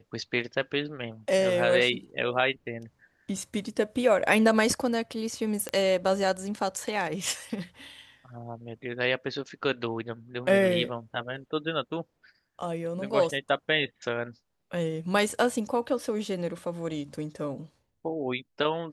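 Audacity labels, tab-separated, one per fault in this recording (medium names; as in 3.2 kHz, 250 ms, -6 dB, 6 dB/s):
5.690000	5.690000	pop -16 dBFS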